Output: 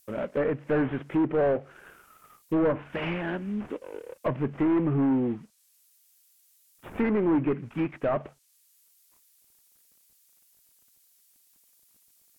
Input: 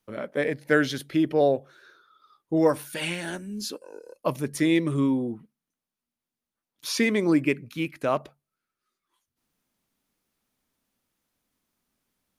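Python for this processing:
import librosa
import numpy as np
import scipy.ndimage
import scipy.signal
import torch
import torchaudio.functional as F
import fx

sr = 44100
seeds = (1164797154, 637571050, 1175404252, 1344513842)

y = fx.cvsd(x, sr, bps=16000)
y = 10.0 ** (-24.0 / 20.0) * np.tanh(y / 10.0 ** (-24.0 / 20.0))
y = fx.high_shelf(y, sr, hz=2500.0, db=-9.0)
y = fx.dmg_noise_colour(y, sr, seeds[0], colour='violet', level_db=-63.0)
y = fx.env_lowpass_down(y, sr, base_hz=1900.0, full_db=-26.5)
y = F.gain(torch.from_numpy(y), 4.5).numpy()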